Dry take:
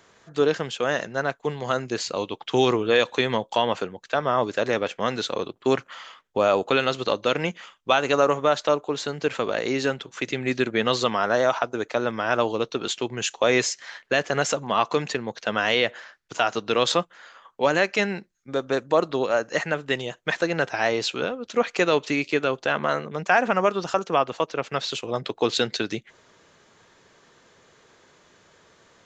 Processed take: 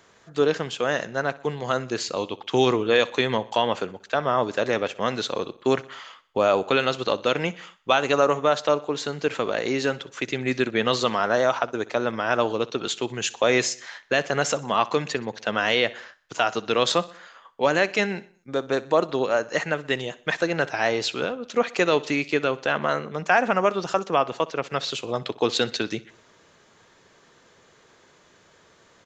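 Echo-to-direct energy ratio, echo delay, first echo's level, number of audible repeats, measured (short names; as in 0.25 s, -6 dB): -18.5 dB, 62 ms, -20.0 dB, 3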